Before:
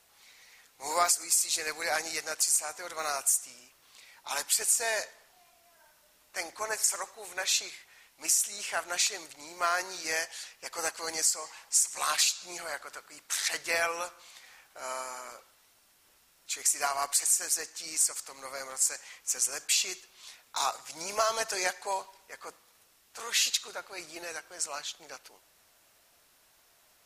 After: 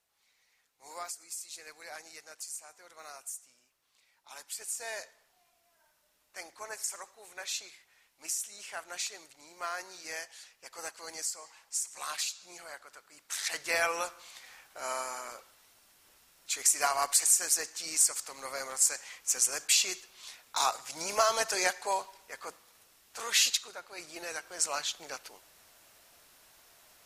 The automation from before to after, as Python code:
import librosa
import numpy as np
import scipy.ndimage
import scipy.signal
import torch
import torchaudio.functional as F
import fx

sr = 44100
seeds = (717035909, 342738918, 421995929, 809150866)

y = fx.gain(x, sr, db=fx.line((4.4, -15.0), (4.93, -8.5), (12.98, -8.5), (13.96, 1.5), (23.45, 1.5), (23.75, -5.0), (24.68, 4.0)))